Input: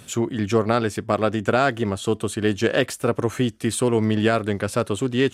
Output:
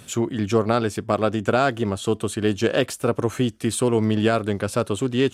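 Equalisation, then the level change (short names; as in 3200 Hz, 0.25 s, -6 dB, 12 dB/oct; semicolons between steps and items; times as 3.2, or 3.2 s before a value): dynamic EQ 1900 Hz, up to -5 dB, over -42 dBFS, Q 3.2; 0.0 dB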